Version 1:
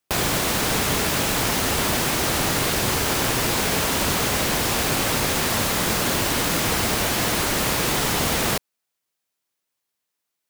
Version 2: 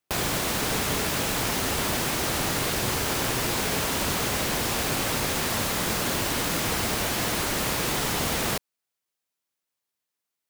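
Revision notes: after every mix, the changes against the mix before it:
background -4.5 dB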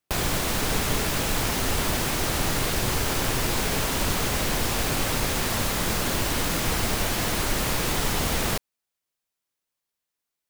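master: remove high-pass 110 Hz 6 dB/octave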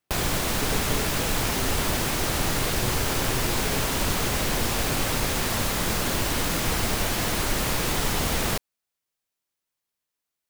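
speech +3.5 dB

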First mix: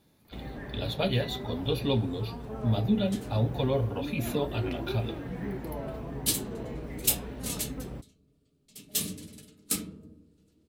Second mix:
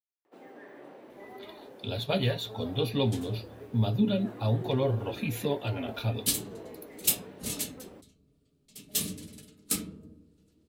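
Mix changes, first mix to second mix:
speech: entry +1.10 s; first sound: add ladder high-pass 270 Hz, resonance 25%

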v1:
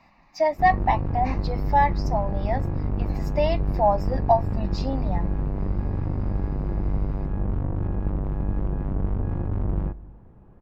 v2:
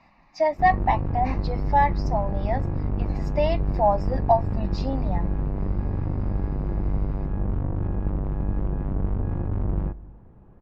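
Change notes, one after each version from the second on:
master: add distance through air 57 m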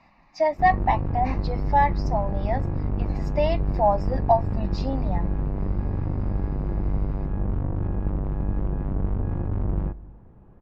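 no change

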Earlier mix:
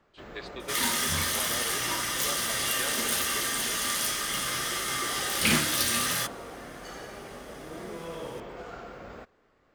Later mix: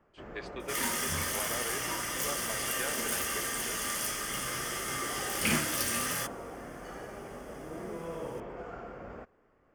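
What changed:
first sound: add treble shelf 2.7 kHz -11.5 dB; second sound -4.0 dB; master: add peaking EQ 3.9 kHz -12.5 dB 0.33 oct

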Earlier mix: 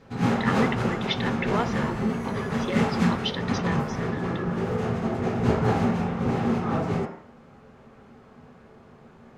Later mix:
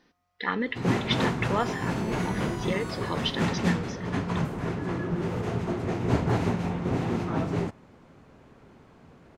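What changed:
first sound: entry +0.65 s; second sound +5.5 dB; reverb: off

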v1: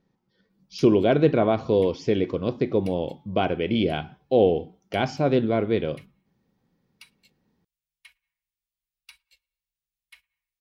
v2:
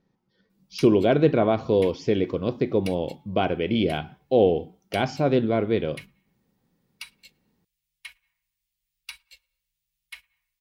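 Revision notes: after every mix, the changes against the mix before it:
background +10.0 dB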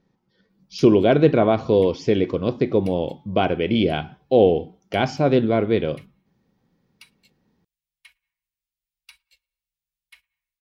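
speech +3.5 dB; background -9.0 dB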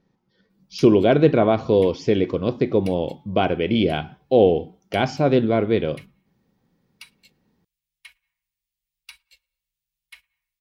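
background +5.0 dB

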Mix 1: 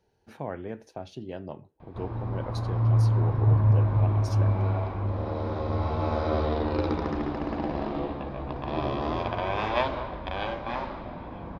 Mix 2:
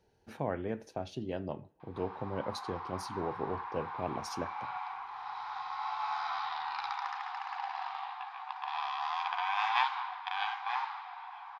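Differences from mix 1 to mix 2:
speech: send +9.5 dB; background: add brick-wall FIR high-pass 720 Hz

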